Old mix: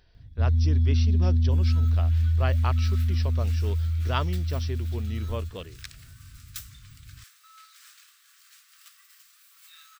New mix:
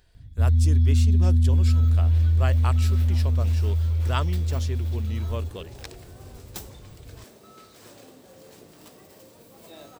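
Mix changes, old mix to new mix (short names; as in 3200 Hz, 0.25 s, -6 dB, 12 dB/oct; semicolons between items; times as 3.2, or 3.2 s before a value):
speech: remove brick-wall FIR low-pass 6000 Hz; first sound +3.0 dB; second sound: remove steep high-pass 1200 Hz 72 dB/oct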